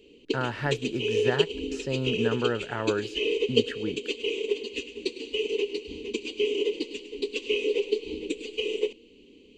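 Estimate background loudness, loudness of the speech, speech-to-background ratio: -30.0 LUFS, -32.0 LUFS, -2.0 dB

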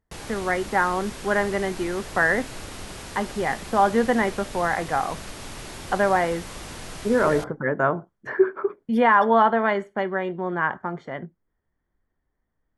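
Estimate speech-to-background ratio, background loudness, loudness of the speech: 14.0 dB, -37.5 LUFS, -23.5 LUFS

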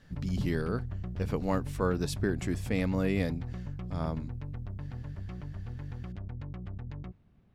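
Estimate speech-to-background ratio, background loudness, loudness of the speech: 7.0 dB, -40.0 LUFS, -33.0 LUFS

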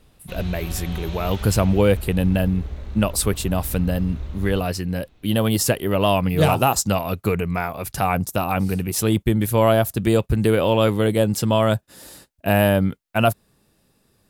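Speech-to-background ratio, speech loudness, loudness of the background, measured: 12.5 dB, -21.0 LUFS, -33.5 LUFS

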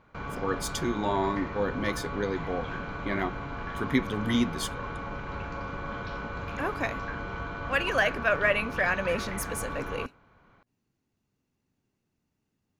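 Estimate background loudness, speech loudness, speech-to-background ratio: -36.5 LUFS, -30.0 LUFS, 6.5 dB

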